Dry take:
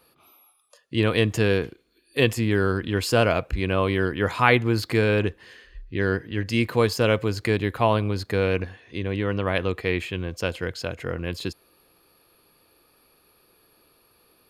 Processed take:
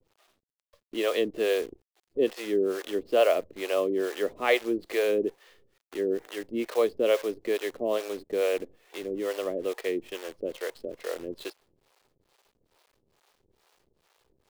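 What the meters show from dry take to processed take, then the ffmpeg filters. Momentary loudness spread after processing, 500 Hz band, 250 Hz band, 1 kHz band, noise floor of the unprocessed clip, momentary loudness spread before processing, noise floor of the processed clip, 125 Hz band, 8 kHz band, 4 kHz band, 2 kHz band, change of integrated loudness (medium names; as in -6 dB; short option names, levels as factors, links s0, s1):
12 LU, -1.5 dB, -7.5 dB, -8.5 dB, -62 dBFS, 10 LU, -80 dBFS, under -25 dB, -5.5 dB, -7.0 dB, -9.5 dB, -5.0 dB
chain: -filter_complex "[0:a]highpass=f=280:w=0.5412,highpass=f=280:w=1.3066,equalizer=f=400:t=q:w=4:g=5,equalizer=f=590:t=q:w=4:g=7,equalizer=f=940:t=q:w=4:g=-8,equalizer=f=1500:t=q:w=4:g=-10,equalizer=f=2400:t=q:w=4:g=-5,lowpass=f=4000:w=0.5412,lowpass=f=4000:w=1.3066,acrusher=bits=7:dc=4:mix=0:aa=0.000001,acrossover=split=450[s0][s1];[s0]aeval=exprs='val(0)*(1-1/2+1/2*cos(2*PI*2.3*n/s))':c=same[s2];[s1]aeval=exprs='val(0)*(1-1/2-1/2*cos(2*PI*2.3*n/s))':c=same[s3];[s2][s3]amix=inputs=2:normalize=0"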